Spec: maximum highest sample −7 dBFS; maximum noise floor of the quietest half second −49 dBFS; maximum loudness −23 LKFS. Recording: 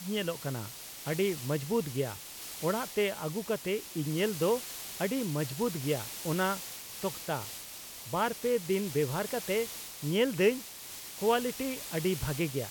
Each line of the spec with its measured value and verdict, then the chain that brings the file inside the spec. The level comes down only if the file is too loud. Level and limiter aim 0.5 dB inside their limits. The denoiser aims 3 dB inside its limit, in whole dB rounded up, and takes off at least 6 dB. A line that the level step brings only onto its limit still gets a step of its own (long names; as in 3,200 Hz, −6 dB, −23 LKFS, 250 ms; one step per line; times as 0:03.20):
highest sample −14.0 dBFS: in spec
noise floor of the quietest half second −45 dBFS: out of spec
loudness −32.5 LKFS: in spec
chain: broadband denoise 7 dB, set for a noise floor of −45 dBFS